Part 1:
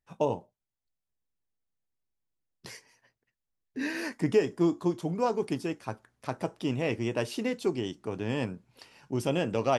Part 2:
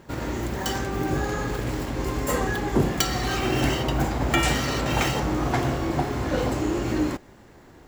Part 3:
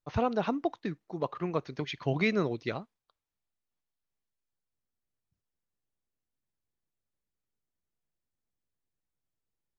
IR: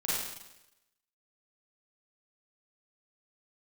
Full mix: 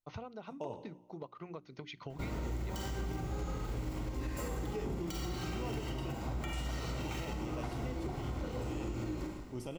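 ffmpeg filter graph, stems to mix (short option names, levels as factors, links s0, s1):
-filter_complex "[0:a]adelay=400,volume=0.211,asplit=2[s0][s1];[s1]volume=0.188[s2];[1:a]lowshelf=f=99:g=11.5,acompressor=threshold=0.0631:ratio=4,adelay=2100,volume=0.251,asplit=2[s3][s4];[s4]volume=0.531[s5];[2:a]bandreject=f=60:t=h:w=6,bandreject=f=120:t=h:w=6,bandreject=f=180:t=h:w=6,bandreject=f=240:t=h:w=6,bandreject=f=300:t=h:w=6,bandreject=f=360:t=h:w=6,acompressor=threshold=0.0141:ratio=12,volume=0.596[s6];[3:a]atrim=start_sample=2205[s7];[s2][s5]amix=inputs=2:normalize=0[s8];[s8][s7]afir=irnorm=-1:irlink=0[s9];[s0][s3][s6][s9]amix=inputs=4:normalize=0,asuperstop=centerf=1700:order=4:qfactor=7.7,alimiter=level_in=1.78:limit=0.0631:level=0:latency=1:release=145,volume=0.562"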